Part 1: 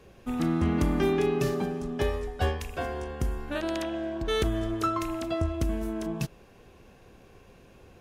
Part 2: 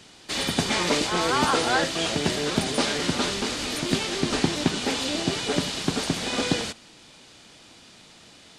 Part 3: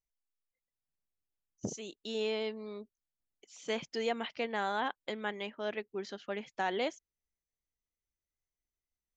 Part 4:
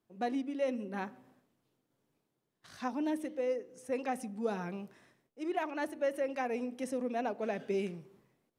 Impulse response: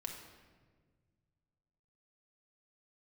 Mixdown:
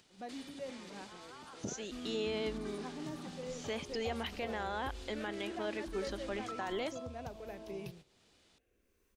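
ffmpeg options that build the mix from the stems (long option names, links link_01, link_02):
-filter_complex "[0:a]acompressor=threshold=-30dB:ratio=6,asplit=2[link_01][link_02];[link_02]afreqshift=-0.29[link_03];[link_01][link_03]amix=inputs=2:normalize=1,adelay=1650,volume=-10dB[link_04];[1:a]alimiter=limit=-16dB:level=0:latency=1:release=125,acompressor=threshold=-40dB:ratio=2,volume=-17dB[link_05];[2:a]volume=0.5dB[link_06];[3:a]volume=-11.5dB[link_07];[link_05][link_06][link_07]amix=inputs=3:normalize=0,acompressor=mode=upward:threshold=-47dB:ratio=2.5,alimiter=level_in=5dB:limit=-24dB:level=0:latency=1:release=44,volume=-5dB,volume=0dB[link_08];[link_04][link_08]amix=inputs=2:normalize=0,agate=range=-11dB:threshold=-54dB:ratio=16:detection=peak"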